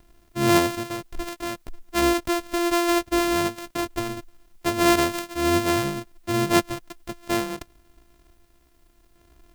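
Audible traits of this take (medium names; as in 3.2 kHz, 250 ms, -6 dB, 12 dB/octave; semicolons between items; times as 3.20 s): a buzz of ramps at a fixed pitch in blocks of 128 samples; random-step tremolo 1.2 Hz; a quantiser's noise floor 12-bit, dither triangular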